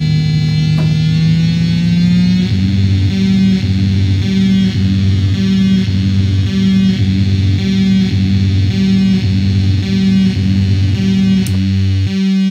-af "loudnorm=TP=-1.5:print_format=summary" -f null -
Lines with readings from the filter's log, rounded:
Input Integrated:    -12.5 LUFS
Input True Peak:      -1.3 dBTP
Input LRA:             0.6 LU
Input Threshold:     -22.5 LUFS